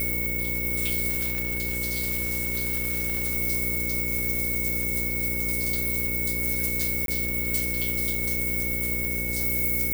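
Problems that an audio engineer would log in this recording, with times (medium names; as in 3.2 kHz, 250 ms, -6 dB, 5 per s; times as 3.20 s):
buzz 60 Hz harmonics 9 -33 dBFS
whine 2.2 kHz -31 dBFS
1.09–3.37 s: clipped -22 dBFS
7.06–7.08 s: dropout 22 ms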